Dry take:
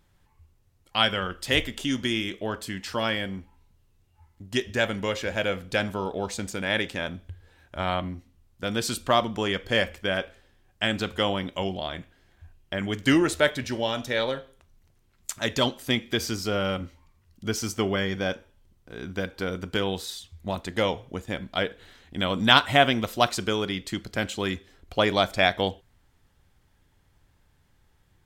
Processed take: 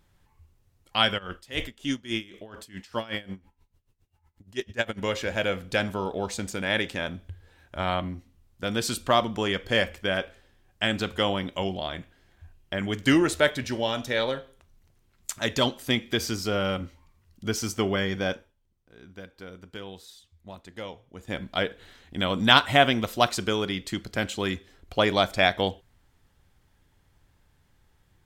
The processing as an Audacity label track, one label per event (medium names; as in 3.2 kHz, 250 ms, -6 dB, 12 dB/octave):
1.170000	5.000000	logarithmic tremolo 3 Hz -> 11 Hz, depth 20 dB
18.330000	21.360000	dip -13 dB, fades 0.22 s